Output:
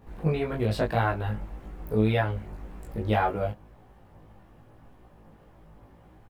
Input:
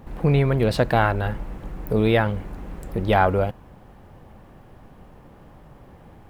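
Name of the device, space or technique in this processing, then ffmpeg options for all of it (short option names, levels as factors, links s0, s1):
double-tracked vocal: -filter_complex "[0:a]asplit=2[s0][s1];[s1]adelay=19,volume=0.794[s2];[s0][s2]amix=inputs=2:normalize=0,flanger=delay=16:depth=2.9:speed=1.8,volume=0.501"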